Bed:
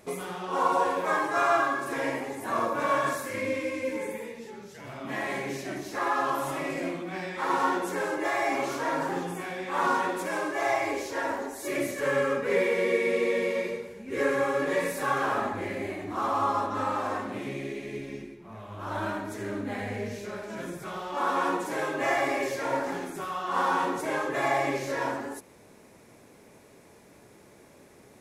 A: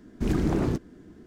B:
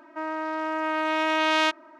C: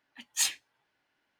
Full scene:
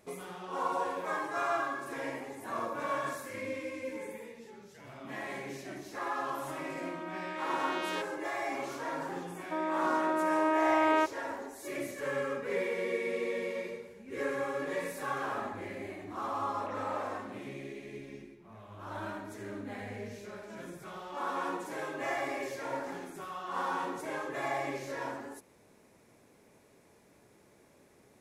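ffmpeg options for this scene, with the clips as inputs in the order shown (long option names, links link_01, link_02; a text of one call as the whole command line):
ffmpeg -i bed.wav -i cue0.wav -i cue1.wav -filter_complex "[2:a]asplit=2[link_01][link_02];[0:a]volume=-8dB[link_03];[link_02]lowpass=1200[link_04];[1:a]highpass=frequency=360:width_type=q:width=0.5412,highpass=frequency=360:width_type=q:width=1.307,lowpass=frequency=2400:width_type=q:width=0.5176,lowpass=frequency=2400:width_type=q:width=0.7071,lowpass=frequency=2400:width_type=q:width=1.932,afreqshift=200[link_05];[link_01]atrim=end=1.99,asetpts=PTS-STARTPTS,volume=-14.5dB,afade=type=in:duration=0.004:curve=hsin,afade=type=out:start_time=1.986:duration=0.004:curve=hsin,adelay=6310[link_06];[link_04]atrim=end=1.99,asetpts=PTS-STARTPTS,volume=-1dB,afade=type=in:duration=0.004:curve=hsin,afade=type=out:start_time=1.986:duration=0.004:curve=hsin,adelay=9350[link_07];[link_05]atrim=end=1.26,asetpts=PTS-STARTPTS,volume=-9dB,afade=type=in:duration=0.004:curve=hsin,afade=type=out:start_time=1.256:duration=0.004:curve=hsin,adelay=16390[link_08];[link_03][link_06][link_07][link_08]amix=inputs=4:normalize=0" out.wav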